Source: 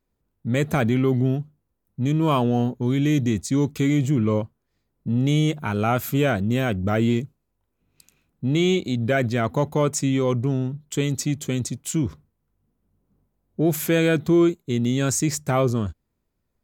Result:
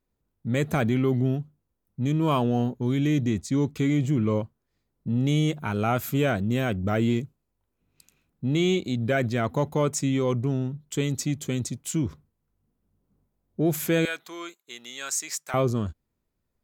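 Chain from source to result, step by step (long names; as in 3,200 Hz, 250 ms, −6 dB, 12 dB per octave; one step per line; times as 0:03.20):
0:03.07–0:04.09: high-shelf EQ 6,500 Hz −6.5 dB
0:14.05–0:15.54: high-pass filter 1,100 Hz 12 dB per octave
level −3 dB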